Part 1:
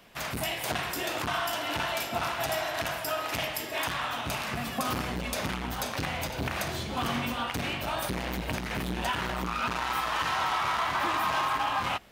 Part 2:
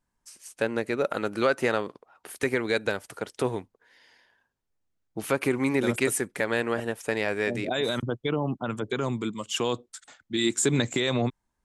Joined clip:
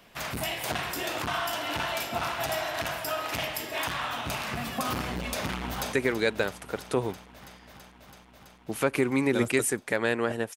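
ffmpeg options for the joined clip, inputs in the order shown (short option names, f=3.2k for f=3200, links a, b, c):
-filter_complex "[0:a]apad=whole_dur=10.56,atrim=end=10.56,atrim=end=5.932[a];[1:a]atrim=start=2.408:end=7.04[b];[a][b]acrossfade=d=0.004:c1=hsin:c2=hsin,asplit=2[c][d];[d]afade=t=in:st=5.36:d=0.01,afade=t=out:st=5.93:d=0.01,aecho=0:1:330|660|990|1320|1650|1980|2310|2640|2970|3300|3630|3960:0.237137|0.201567|0.171332|0.145632|0.123787|0.105219|0.0894362|0.0760208|0.0646177|0.054925|0.0466863|0.0396833[e];[c][e]amix=inputs=2:normalize=0"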